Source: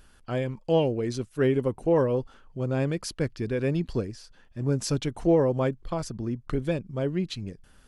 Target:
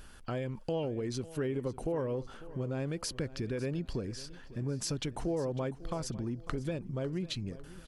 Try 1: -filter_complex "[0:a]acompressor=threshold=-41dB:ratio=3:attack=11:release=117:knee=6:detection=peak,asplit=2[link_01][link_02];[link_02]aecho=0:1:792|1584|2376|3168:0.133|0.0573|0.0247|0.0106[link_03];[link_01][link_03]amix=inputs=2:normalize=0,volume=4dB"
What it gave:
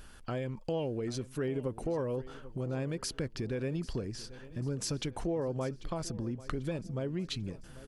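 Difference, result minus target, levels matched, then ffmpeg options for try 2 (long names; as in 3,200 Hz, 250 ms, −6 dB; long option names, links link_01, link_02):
echo 242 ms late
-filter_complex "[0:a]acompressor=threshold=-41dB:ratio=3:attack=11:release=117:knee=6:detection=peak,asplit=2[link_01][link_02];[link_02]aecho=0:1:550|1100|1650|2200:0.133|0.0573|0.0247|0.0106[link_03];[link_01][link_03]amix=inputs=2:normalize=0,volume=4dB"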